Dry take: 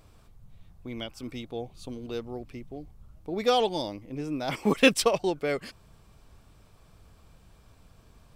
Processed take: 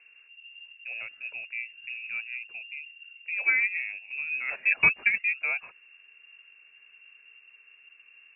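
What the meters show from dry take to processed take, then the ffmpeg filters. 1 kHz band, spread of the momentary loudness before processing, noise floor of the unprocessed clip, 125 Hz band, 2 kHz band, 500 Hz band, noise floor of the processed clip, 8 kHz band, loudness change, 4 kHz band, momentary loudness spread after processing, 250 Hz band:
−13.0 dB, 21 LU, −58 dBFS, −14.0 dB, +9.5 dB, −24.0 dB, −58 dBFS, below −40 dB, +1.0 dB, below −10 dB, 20 LU, below −20 dB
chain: -af "highshelf=frequency=2000:gain=-11.5,lowpass=frequency=2400:width_type=q:width=0.5098,lowpass=frequency=2400:width_type=q:width=0.6013,lowpass=frequency=2400:width_type=q:width=0.9,lowpass=frequency=2400:width_type=q:width=2.563,afreqshift=-2800"

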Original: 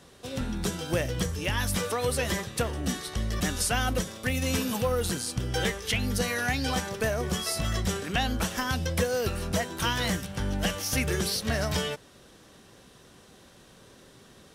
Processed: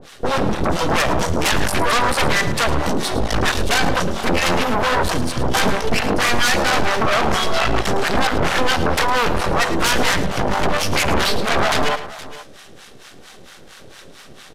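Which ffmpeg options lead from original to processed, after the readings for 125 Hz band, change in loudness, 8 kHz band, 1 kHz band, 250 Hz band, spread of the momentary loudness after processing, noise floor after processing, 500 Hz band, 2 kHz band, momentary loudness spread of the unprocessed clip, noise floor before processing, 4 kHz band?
+5.5 dB, +10.0 dB, +6.0 dB, +15.5 dB, +8.5 dB, 4 LU, −42 dBFS, +10.0 dB, +12.5 dB, 4 LU, −54 dBFS, +10.5 dB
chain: -filter_complex "[0:a]bandreject=frequency=1000:width=7.3,afwtdn=0.0178,lowshelf=frequency=120:gain=10.5,acrossover=split=3100[link_01][link_02];[link_01]alimiter=limit=-19dB:level=0:latency=1:release=400[link_03];[link_02]acompressor=threshold=-49dB:ratio=6[link_04];[link_03][link_04]amix=inputs=2:normalize=0,asplit=2[link_05][link_06];[link_06]highpass=frequency=720:poles=1,volume=21dB,asoftclip=type=tanh:threshold=-17.5dB[link_07];[link_05][link_07]amix=inputs=2:normalize=0,lowpass=frequency=4000:poles=1,volume=-6dB,aeval=exprs='max(val(0),0)':channel_layout=same,acrossover=split=720[link_08][link_09];[link_08]aeval=exprs='val(0)*(1-1/2+1/2*cos(2*PI*4.4*n/s))':channel_layout=same[link_10];[link_09]aeval=exprs='val(0)*(1-1/2-1/2*cos(2*PI*4.4*n/s))':channel_layout=same[link_11];[link_10][link_11]amix=inputs=2:normalize=0,aeval=exprs='0.106*sin(PI/2*5.01*val(0)/0.106)':channel_layout=same,aecho=1:1:54|108|469:0.106|0.211|0.141,aresample=32000,aresample=44100,adynamicequalizer=threshold=0.0126:dfrequency=5400:dqfactor=0.7:tfrequency=5400:tqfactor=0.7:attack=5:release=100:ratio=0.375:range=2:mode=cutabove:tftype=highshelf,volume=7dB"

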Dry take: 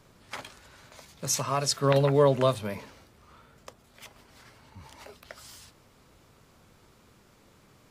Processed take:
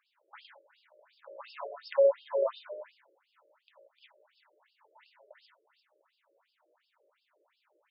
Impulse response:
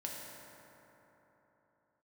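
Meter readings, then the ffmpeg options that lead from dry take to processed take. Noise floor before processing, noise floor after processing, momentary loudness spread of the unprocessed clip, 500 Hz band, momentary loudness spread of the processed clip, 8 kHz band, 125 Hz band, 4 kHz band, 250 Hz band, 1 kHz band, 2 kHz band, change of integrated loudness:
−60 dBFS, −79 dBFS, 20 LU, −3.5 dB, 21 LU, below −40 dB, below −40 dB, −17.5 dB, below −25 dB, −13.0 dB, −11.5 dB, −5.5 dB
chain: -filter_complex "[0:a]bandreject=frequency=4100:width=24[link_01];[1:a]atrim=start_sample=2205,afade=type=out:start_time=0.24:duration=0.01,atrim=end_sample=11025[link_02];[link_01][link_02]afir=irnorm=-1:irlink=0,afftfilt=real='re*between(b*sr/1024,430*pow(3800/430,0.5+0.5*sin(2*PI*2.8*pts/sr))/1.41,430*pow(3800/430,0.5+0.5*sin(2*PI*2.8*pts/sr))*1.41)':imag='im*between(b*sr/1024,430*pow(3800/430,0.5+0.5*sin(2*PI*2.8*pts/sr))/1.41,430*pow(3800/430,0.5+0.5*sin(2*PI*2.8*pts/sr))*1.41)':win_size=1024:overlap=0.75,volume=-4.5dB"

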